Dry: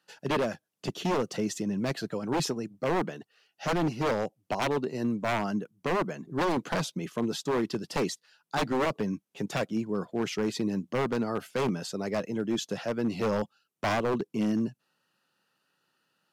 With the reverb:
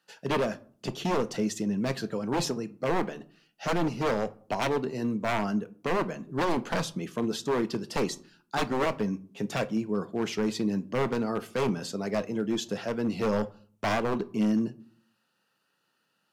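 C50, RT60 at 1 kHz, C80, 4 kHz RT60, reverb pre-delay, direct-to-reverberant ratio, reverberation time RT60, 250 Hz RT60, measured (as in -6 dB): 19.5 dB, 0.45 s, 25.5 dB, 0.30 s, 4 ms, 11.0 dB, 0.50 s, 0.70 s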